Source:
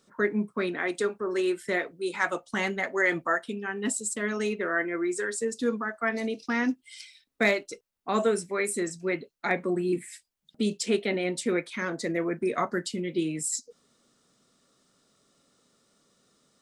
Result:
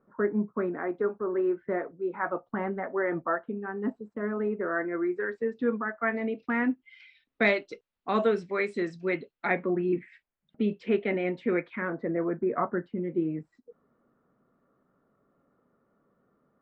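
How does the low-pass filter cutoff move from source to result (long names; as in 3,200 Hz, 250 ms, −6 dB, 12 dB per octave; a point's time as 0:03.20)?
low-pass filter 24 dB per octave
0:04.56 1,400 Hz
0:05.63 2,300 Hz
0:06.96 2,300 Hz
0:07.43 3,900 Hz
0:09.14 3,900 Hz
0:09.91 2,400 Hz
0:11.64 2,400 Hz
0:12.06 1,500 Hz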